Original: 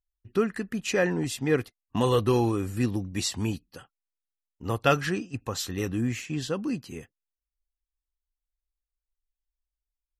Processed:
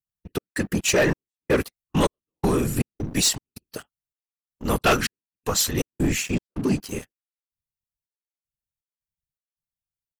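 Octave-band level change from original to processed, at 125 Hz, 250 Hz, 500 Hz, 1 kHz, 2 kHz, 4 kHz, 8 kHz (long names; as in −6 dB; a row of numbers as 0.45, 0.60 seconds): +1.5, +2.5, +1.5, +3.0, +5.0, +7.5, +10.5 decibels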